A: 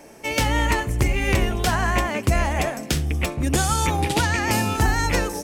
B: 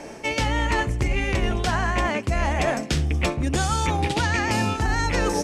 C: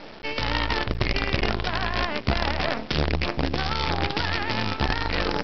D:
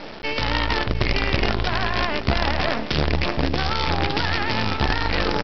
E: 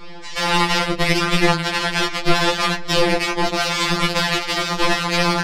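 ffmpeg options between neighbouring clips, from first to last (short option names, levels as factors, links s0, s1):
-af "lowpass=6800,areverse,acompressor=threshold=0.0447:ratio=10,areverse,volume=2.51"
-af "alimiter=limit=0.178:level=0:latency=1:release=32,aresample=11025,acrusher=bits=4:dc=4:mix=0:aa=0.000001,aresample=44100"
-filter_complex "[0:a]asplit=2[s0][s1];[s1]alimiter=limit=0.106:level=0:latency=1:release=22,volume=0.891[s2];[s0][s2]amix=inputs=2:normalize=0,aecho=1:1:707:0.224"
-af "aeval=exprs='0.531*(cos(1*acos(clip(val(0)/0.531,-1,1)))-cos(1*PI/2))+0.266*(cos(4*acos(clip(val(0)/0.531,-1,1)))-cos(4*PI/2))':c=same,flanger=delay=16.5:depth=5.9:speed=0.75,afftfilt=real='re*2.83*eq(mod(b,8),0)':imag='im*2.83*eq(mod(b,8),0)':win_size=2048:overlap=0.75,volume=1.88"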